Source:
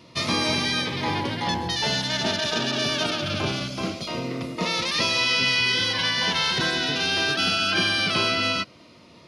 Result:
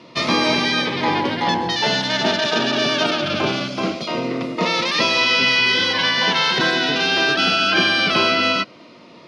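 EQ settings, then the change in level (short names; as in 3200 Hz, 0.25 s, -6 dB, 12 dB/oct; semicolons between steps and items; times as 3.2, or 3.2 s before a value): BPF 200–6700 Hz; high shelf 3900 Hz -7.5 dB; +8.0 dB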